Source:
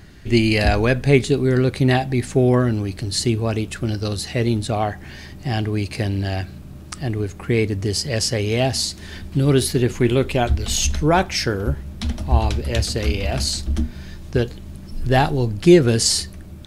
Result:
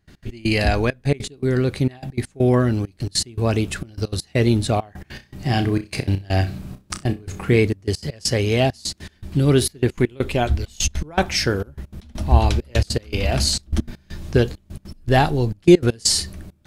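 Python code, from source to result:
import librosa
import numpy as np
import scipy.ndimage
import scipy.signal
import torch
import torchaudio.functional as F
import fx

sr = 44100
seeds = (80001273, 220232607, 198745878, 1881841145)

y = fx.rider(x, sr, range_db=5, speed_s=2.0)
y = fx.step_gate(y, sr, bpm=200, pattern='.x.x..xxxxxx.', floor_db=-24.0, edge_ms=4.5)
y = fx.room_flutter(y, sr, wall_m=5.4, rt60_s=0.21, at=(5.11, 7.56))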